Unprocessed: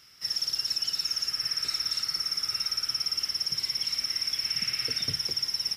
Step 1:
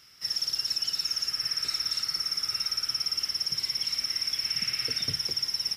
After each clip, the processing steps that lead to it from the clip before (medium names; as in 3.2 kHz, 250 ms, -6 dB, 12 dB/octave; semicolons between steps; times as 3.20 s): no audible change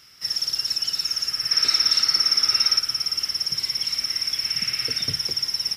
time-frequency box 1.52–2.79 s, 210–6300 Hz +6 dB; trim +4.5 dB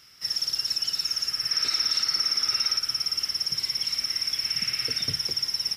peak limiter -12.5 dBFS, peak gain reduction 5.5 dB; trim -2.5 dB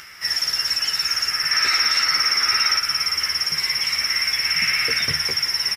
graphic EQ 125/250/1000/2000/4000 Hz -3/-4/+4/+11/-7 dB; upward compressor, threshold -44 dBFS; doubling 13 ms -4 dB; trim +6.5 dB